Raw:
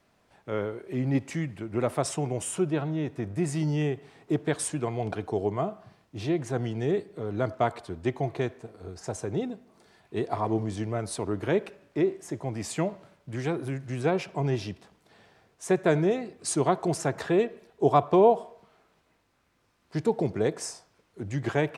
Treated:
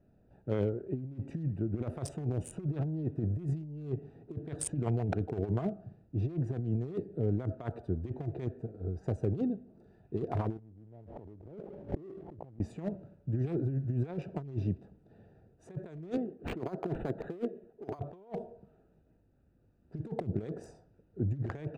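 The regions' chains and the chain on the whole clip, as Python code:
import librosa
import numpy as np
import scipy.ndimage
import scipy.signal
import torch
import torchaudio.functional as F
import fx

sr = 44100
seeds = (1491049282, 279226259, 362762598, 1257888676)

y = fx.chain(x, sr, fx.cheby1_lowpass(hz=870.0, order=5),
    fx.env_flatten(amount_pct=100), at=(10.58, 12.59))
y = fx.chain(y, sr, fx.highpass(hz=210.0, slope=12),
    fx.resample_linear(factor=8), at=(16.17, 17.99))
y = fx.wiener(y, sr, points=41)
y = fx.low_shelf(y, sr, hz=200.0, db=8.0)
y = fx.over_compress(y, sr, threshold_db=-29.0, ratio=-0.5)
y = y * 10.0 ** (-5.0 / 20.0)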